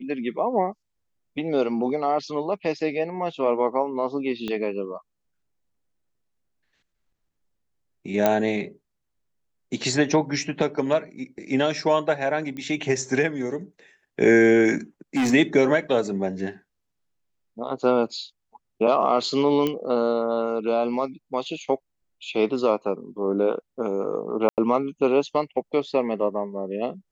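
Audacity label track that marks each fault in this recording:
4.480000	4.480000	pop -17 dBFS
8.260000	8.260000	pop -6 dBFS
12.570000	12.570000	pop -23 dBFS
15.160000	15.340000	clipped -19 dBFS
19.670000	19.670000	pop -12 dBFS
24.490000	24.580000	dropout 88 ms

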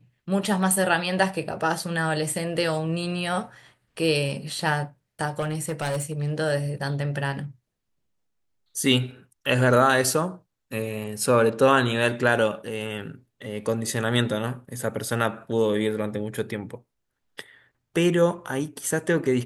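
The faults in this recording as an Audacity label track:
5.390000	6.340000	clipped -23 dBFS

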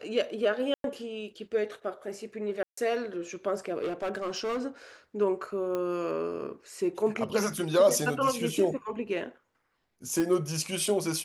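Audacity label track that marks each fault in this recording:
0.740000	0.840000	dropout 102 ms
2.630000	2.770000	dropout 144 ms
3.810000	4.610000	clipped -27.5 dBFS
5.750000	5.750000	pop -20 dBFS
10.200000	10.200000	pop -17 dBFS

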